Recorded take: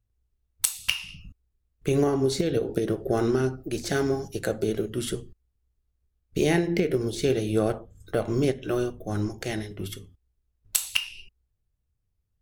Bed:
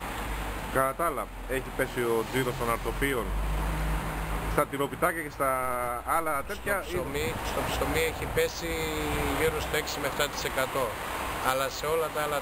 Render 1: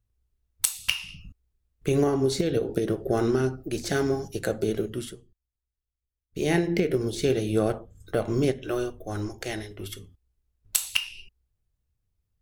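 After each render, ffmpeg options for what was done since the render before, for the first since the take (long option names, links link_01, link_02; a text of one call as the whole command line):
ffmpeg -i in.wav -filter_complex "[0:a]asettb=1/sr,asplit=3[link_01][link_02][link_03];[link_01]atrim=end=8.664[link_04];[link_02]atrim=start=8.66:end=9.98,asetpts=PTS-STARTPTS,afade=type=in:duration=0.004:curve=qsin,afade=type=out:start_time=1.316:duration=0.004:curve=qsin,equalizer=frequency=170:width=1.2:gain=-9[link_05];[link_03]atrim=start=9.976[link_06];[link_04][link_05]acrossfade=duration=0.004:curve1=hsin:curve2=qsin[link_07];[link_07][link_06]acrossfade=duration=0.004:curve1=qsin:curve2=hsin,asplit=3[link_08][link_09][link_10];[link_08]atrim=end=5.15,asetpts=PTS-STARTPTS,afade=type=out:start_time=4.9:duration=0.25:silence=0.188365[link_11];[link_09]atrim=start=5.15:end=6.3,asetpts=PTS-STARTPTS,volume=-14.5dB[link_12];[link_10]atrim=start=6.3,asetpts=PTS-STARTPTS,afade=type=in:duration=0.25:silence=0.188365[link_13];[link_11][link_12][link_13]concat=n=3:v=0:a=1" out.wav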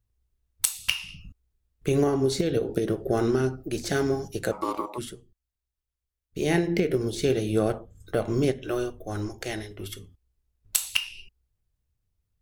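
ffmpeg -i in.wav -filter_complex "[0:a]asplit=3[link_01][link_02][link_03];[link_01]afade=type=out:start_time=4.51:duration=0.02[link_04];[link_02]aeval=exprs='val(0)*sin(2*PI*730*n/s)':channel_layout=same,afade=type=in:start_time=4.51:duration=0.02,afade=type=out:start_time=4.97:duration=0.02[link_05];[link_03]afade=type=in:start_time=4.97:duration=0.02[link_06];[link_04][link_05][link_06]amix=inputs=3:normalize=0" out.wav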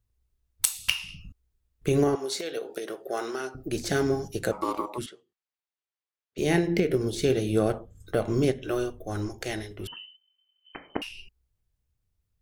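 ffmpeg -i in.wav -filter_complex "[0:a]asettb=1/sr,asplit=3[link_01][link_02][link_03];[link_01]atrim=end=2.154[link_04];[link_02]atrim=start=2.15:end=3.55,asetpts=PTS-STARTPTS,afade=type=in:duration=0.004:curve=qsin,afade=type=out:start_time=1.396:duration=0.004:curve=qsin,highpass=640[link_05];[link_03]atrim=start=3.546[link_06];[link_04][link_05]acrossfade=duration=0.004:curve1=hsin:curve2=qsin[link_07];[link_07][link_06]acrossfade=duration=0.004:curve1=qsin:curve2=hsin,asettb=1/sr,asplit=3[link_08][link_09][link_10];[link_08]atrim=end=5.064[link_11];[link_09]atrim=start=5.06:end=6.38,asetpts=PTS-STARTPTS,afade=type=in:duration=0.004:curve=qsin,afade=type=out:start_time=1.316:duration=0.004:curve=qsin,highpass=530,lowpass=4100[link_12];[link_10]atrim=start=6.376[link_13];[link_11][link_12]acrossfade=duration=0.004:curve1=hsin:curve2=qsin[link_14];[link_14][link_13]acrossfade=duration=0.004:curve1=qsin:curve2=hsin,asettb=1/sr,asplit=3[link_15][link_16][link_17];[link_15]atrim=end=9.874[link_18];[link_16]atrim=start=9.87:end=11.02,asetpts=PTS-STARTPTS,afade=type=in:duration=0.004:curve=qsin,afade=type=out:start_time=1.146:duration=0.004:curve=qsin,lowpass=frequency=2600:width_type=q:width=0.5098,lowpass=frequency=2600:width_type=q:width=0.6013,lowpass=frequency=2600:width_type=q:width=0.9,lowpass=frequency=2600:width_type=q:width=2.563,afreqshift=-3100[link_19];[link_17]atrim=start=11.016[link_20];[link_18][link_19]acrossfade=duration=0.004:curve1=hsin:curve2=qsin[link_21];[link_21][link_20]acrossfade=duration=0.004:curve1=qsin:curve2=hsin" out.wav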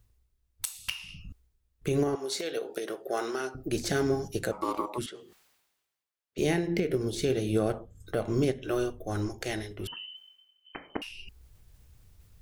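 ffmpeg -i in.wav -af "areverse,acompressor=mode=upward:threshold=-38dB:ratio=2.5,areverse,alimiter=limit=-16dB:level=0:latency=1:release=434" out.wav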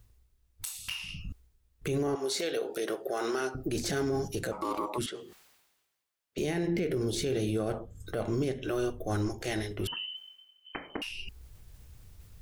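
ffmpeg -i in.wav -filter_complex "[0:a]asplit=2[link_01][link_02];[link_02]acompressor=threshold=-35dB:ratio=6,volume=-3dB[link_03];[link_01][link_03]amix=inputs=2:normalize=0,alimiter=limit=-22.5dB:level=0:latency=1:release=14" out.wav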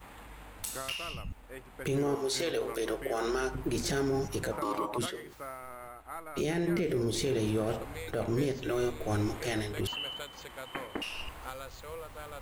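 ffmpeg -i in.wav -i bed.wav -filter_complex "[1:a]volume=-15.5dB[link_01];[0:a][link_01]amix=inputs=2:normalize=0" out.wav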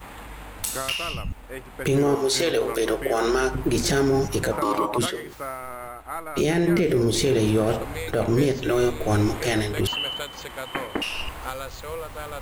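ffmpeg -i in.wav -af "volume=9.5dB" out.wav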